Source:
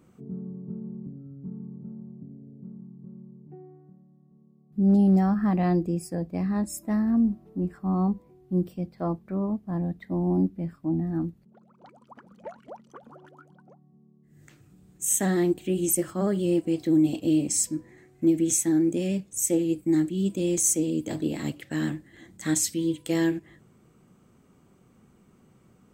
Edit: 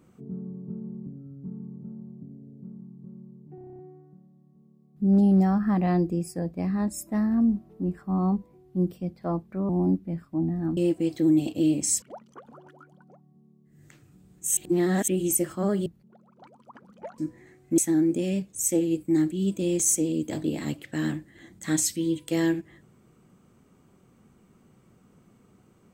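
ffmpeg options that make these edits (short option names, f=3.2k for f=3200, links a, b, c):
-filter_complex "[0:a]asplit=17[a][b][c][d][e][f][g][h][i][j][k][l][m][n][o][p][q];[a]atrim=end=3.582[r];[b]atrim=start=3.548:end=3.582[s];[c]atrim=start=3.548:end=3.582[t];[d]atrim=start=3.548:end=3.582[u];[e]atrim=start=3.548:end=3.582[v];[f]atrim=start=3.548:end=3.582[w];[g]atrim=start=3.548:end=3.582[x];[h]atrim=start=3.548:end=3.582[y];[i]atrim=start=3.548:end=9.452[z];[j]atrim=start=10.198:end=11.282[aa];[k]atrim=start=16.438:end=17.692[ab];[l]atrim=start=12.598:end=15.152[ac];[m]atrim=start=15.148:end=15.662,asetpts=PTS-STARTPTS,areverse[ad];[n]atrim=start=15.658:end=16.442[ae];[o]atrim=start=11.278:end=12.602[af];[p]atrim=start=17.688:end=18.292[ag];[q]atrim=start=18.558[ah];[r][s]acrossfade=d=0.004:c1=hsin:c2=hsin[ai];[ai][t]acrossfade=d=0.004:c1=hsin:c2=hsin[aj];[aj][u]acrossfade=d=0.004:c1=hsin:c2=hsin[ak];[ak][v]acrossfade=d=0.004:c1=hsin:c2=hsin[al];[al][w]acrossfade=d=0.004:c1=hsin:c2=hsin[am];[am][x]acrossfade=d=0.004:c1=hsin:c2=hsin[an];[an][y]acrossfade=d=0.004:c1=hsin:c2=hsin[ao];[ao][z]acrossfade=d=0.004:c1=hsin:c2=hsin[ap];[ap][aa]acrossfade=d=0.004:c1=hsin:c2=hsin[aq];[aq][ab]acrossfade=d=0.004:c1=hsin:c2=hsin[ar];[ar][ac]acrossfade=d=0.004:c1=hsin:c2=hsin[as];[as][ad]acrossfade=d=0.004:c1=hsin:c2=hsin[at];[at][ae]acrossfade=d=0.004:c1=hsin:c2=hsin[au];[au][af]acrossfade=d=0.004:c1=hsin:c2=hsin[av];[av][ag]acrossfade=d=0.004:c1=hsin:c2=hsin[aw];[aw][ah]acrossfade=d=0.004:c1=hsin:c2=hsin"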